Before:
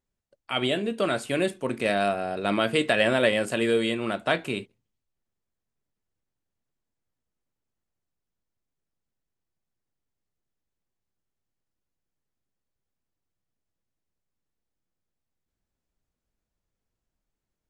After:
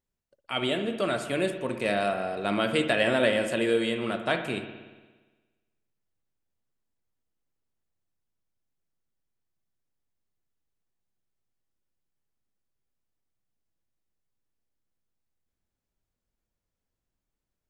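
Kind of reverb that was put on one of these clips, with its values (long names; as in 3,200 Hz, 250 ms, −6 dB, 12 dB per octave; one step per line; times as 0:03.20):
spring reverb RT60 1.3 s, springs 58 ms, chirp 80 ms, DRR 7.5 dB
level −2.5 dB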